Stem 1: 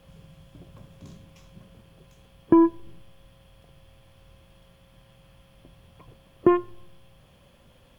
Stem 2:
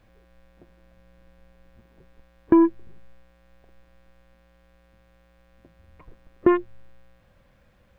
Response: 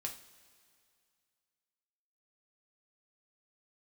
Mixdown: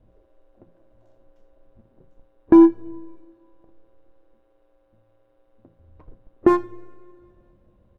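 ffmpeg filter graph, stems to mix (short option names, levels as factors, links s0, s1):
-filter_complex "[0:a]aeval=exprs='val(0)*sin(2*PI*460*n/s)':c=same,highpass=f=300:w=0.5412,highpass=f=300:w=1.3066,volume=0.188[s0];[1:a]adynamicsmooth=sensitivity=7.5:basefreq=560,adelay=0.4,volume=1,asplit=2[s1][s2];[s2]volume=0.631[s3];[2:a]atrim=start_sample=2205[s4];[s3][s4]afir=irnorm=-1:irlink=0[s5];[s0][s1][s5]amix=inputs=3:normalize=0,highshelf=f=2500:g=-9,bandreject=f=60:t=h:w=6,bandreject=f=120:t=h:w=6,bandreject=f=180:t=h:w=6"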